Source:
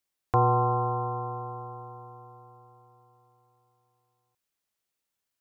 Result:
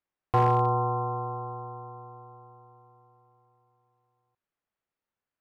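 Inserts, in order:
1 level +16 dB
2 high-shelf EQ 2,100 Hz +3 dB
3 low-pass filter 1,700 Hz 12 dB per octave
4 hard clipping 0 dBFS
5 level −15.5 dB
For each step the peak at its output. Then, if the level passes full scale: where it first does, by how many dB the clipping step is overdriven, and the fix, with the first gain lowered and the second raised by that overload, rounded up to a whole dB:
+5.0, +5.0, +5.0, 0.0, −15.5 dBFS
step 1, 5.0 dB
step 1 +11 dB, step 5 −10.5 dB

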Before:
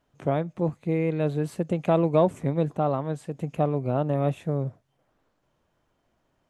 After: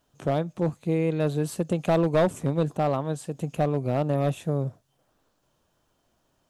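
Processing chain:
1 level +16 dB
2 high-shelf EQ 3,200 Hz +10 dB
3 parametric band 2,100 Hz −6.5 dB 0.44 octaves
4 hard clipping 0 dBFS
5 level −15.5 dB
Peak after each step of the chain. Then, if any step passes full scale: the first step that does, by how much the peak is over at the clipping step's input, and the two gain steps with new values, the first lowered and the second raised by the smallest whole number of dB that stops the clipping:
+8.0, +8.5, +8.5, 0.0, −15.5 dBFS
step 1, 8.5 dB
step 1 +7 dB, step 5 −6.5 dB

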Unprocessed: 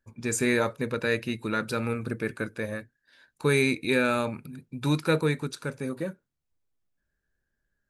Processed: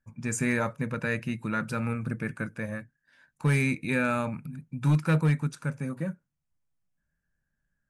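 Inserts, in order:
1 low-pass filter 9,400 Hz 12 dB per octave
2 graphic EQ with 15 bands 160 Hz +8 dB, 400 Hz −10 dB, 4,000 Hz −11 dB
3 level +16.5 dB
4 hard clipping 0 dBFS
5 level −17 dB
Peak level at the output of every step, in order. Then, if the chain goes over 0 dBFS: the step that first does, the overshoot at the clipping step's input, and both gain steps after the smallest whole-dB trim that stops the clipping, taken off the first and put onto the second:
−10.5, −11.0, +5.5, 0.0, −17.0 dBFS
step 3, 5.5 dB
step 3 +10.5 dB, step 5 −11 dB

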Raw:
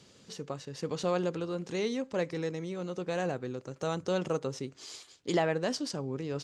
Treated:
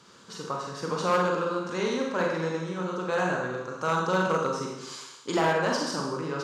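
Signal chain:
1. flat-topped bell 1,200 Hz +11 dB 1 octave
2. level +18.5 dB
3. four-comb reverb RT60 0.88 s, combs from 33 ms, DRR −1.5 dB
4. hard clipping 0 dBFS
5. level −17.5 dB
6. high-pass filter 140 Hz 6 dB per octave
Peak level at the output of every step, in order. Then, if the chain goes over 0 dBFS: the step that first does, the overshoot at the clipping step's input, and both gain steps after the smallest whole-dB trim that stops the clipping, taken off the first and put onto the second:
−11.0, +7.5, +9.0, 0.0, −17.5, −14.5 dBFS
step 2, 9.0 dB
step 2 +9.5 dB, step 5 −8.5 dB

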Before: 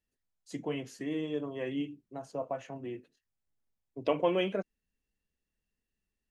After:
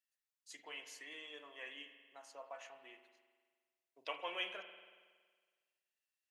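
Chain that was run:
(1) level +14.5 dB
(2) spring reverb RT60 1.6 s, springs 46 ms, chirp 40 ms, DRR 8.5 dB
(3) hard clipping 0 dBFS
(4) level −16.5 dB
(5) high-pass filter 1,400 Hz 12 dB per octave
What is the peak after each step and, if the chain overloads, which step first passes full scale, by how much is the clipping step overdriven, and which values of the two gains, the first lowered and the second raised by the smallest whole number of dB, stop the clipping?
−1.0, −1.5, −1.5, −18.0, −27.0 dBFS
no step passes full scale

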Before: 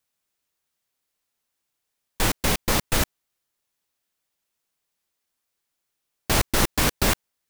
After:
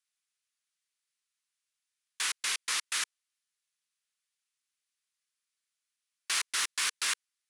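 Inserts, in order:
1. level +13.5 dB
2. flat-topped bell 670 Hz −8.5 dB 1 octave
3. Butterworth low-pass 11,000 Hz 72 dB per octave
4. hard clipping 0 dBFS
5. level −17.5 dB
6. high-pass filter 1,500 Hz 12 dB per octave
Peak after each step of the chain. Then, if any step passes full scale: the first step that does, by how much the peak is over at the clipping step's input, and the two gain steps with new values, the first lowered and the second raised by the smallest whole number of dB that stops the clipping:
+6.5, +6.5, +6.5, 0.0, −17.5, −17.5 dBFS
step 1, 6.5 dB
step 1 +6.5 dB, step 5 −10.5 dB

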